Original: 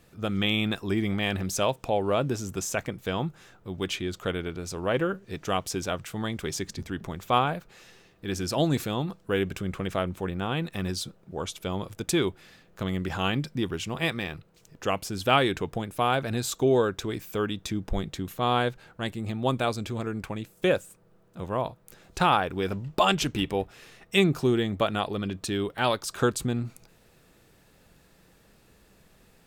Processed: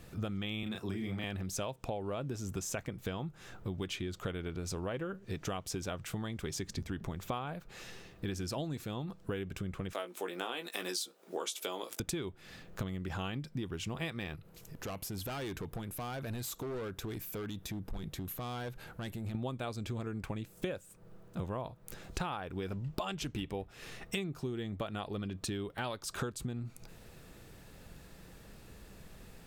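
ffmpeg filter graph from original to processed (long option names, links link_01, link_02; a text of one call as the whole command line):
ffmpeg -i in.wav -filter_complex "[0:a]asettb=1/sr,asplit=3[link_01][link_02][link_03];[link_01]atrim=end=0.634[link_04];[link_02]atrim=start=0.63:end=1.24,asetpts=PTS-STARTPTS,afade=type=in:duration=0.004:curve=qsin,afade=type=out:start_time=0.606:duration=0.004:curve=qsin,highpass=95,asplit=2[link_05][link_06];[link_06]adelay=32,volume=-4dB[link_07];[link_05][link_07]amix=inputs=2:normalize=0,atrim=end_sample=26901,acrossover=split=160|3000[link_08][link_09][link_10];[link_09]acompressor=threshold=-26dB:ratio=6:attack=3.2:release=140:knee=2.83:detection=peak[link_11];[link_08][link_11][link_10]amix=inputs=3:normalize=0[link_12];[link_03]atrim=start=1.236[link_13];[link_04][link_12]acrossfade=duration=0.004:curve1=hsin:curve2=qsin[link_14];[link_14][link_13]acrossfade=duration=0.004:curve1=qsin:curve2=hsin,asettb=1/sr,asplit=3[link_15][link_16][link_17];[link_15]atrim=end=9.934[link_18];[link_16]atrim=start=9.93:end=12,asetpts=PTS-STARTPTS,afade=type=in:duration=0.004:curve=qsin,afade=type=out:start_time=2.066:duration=0.004:curve=qsin,highpass=frequency=320:width=0.5412,highpass=frequency=320:width=1.3066,highshelf=frequency=3400:gain=10,asplit=2[link_19][link_20];[link_20]adelay=17,volume=-7dB[link_21];[link_19][link_21]amix=inputs=2:normalize=0,atrim=end_sample=91287[link_22];[link_17]atrim=start=11.996[link_23];[link_18][link_22]acrossfade=duration=0.004:curve1=hsin:curve2=qsin[link_24];[link_24][link_23]acrossfade=duration=0.004:curve1=qsin:curve2=hsin,asettb=1/sr,asplit=3[link_25][link_26][link_27];[link_25]atrim=end=14.354[link_28];[link_26]atrim=start=14.35:end=19.35,asetpts=PTS-STARTPTS,afade=type=in:duration=0.004:curve=qsin,afade=type=out:start_time=4.996:duration=0.004:curve=qsin,equalizer=frequency=12000:width_type=o:width=0.35:gain=13.5,acompressor=threshold=-49dB:ratio=2:attack=3.2:release=140:knee=1:detection=peak,asoftclip=type=hard:threshold=-39.5dB[link_29];[link_27]atrim=start=19.346[link_30];[link_28][link_29]acrossfade=duration=0.004:curve1=hsin:curve2=qsin[link_31];[link_31][link_30]acrossfade=duration=0.004:curve1=qsin:curve2=hsin,lowshelf=frequency=140:gain=6.5,acompressor=threshold=-37dB:ratio=16,volume=3dB" out.wav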